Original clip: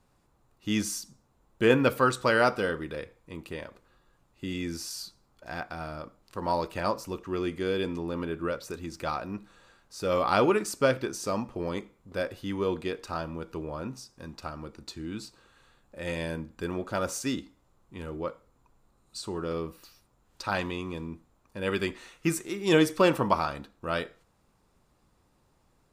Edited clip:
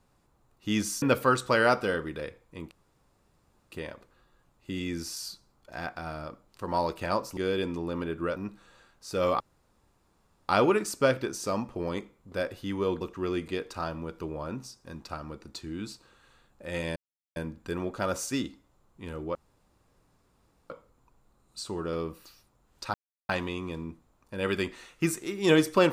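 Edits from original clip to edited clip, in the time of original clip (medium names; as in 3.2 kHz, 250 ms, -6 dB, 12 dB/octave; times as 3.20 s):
1.02–1.77 s: delete
3.46 s: insert room tone 1.01 s
7.11–7.58 s: move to 12.81 s
8.57–9.25 s: delete
10.29 s: insert room tone 1.09 s
16.29 s: insert silence 0.40 s
18.28 s: insert room tone 1.35 s
20.52 s: insert silence 0.35 s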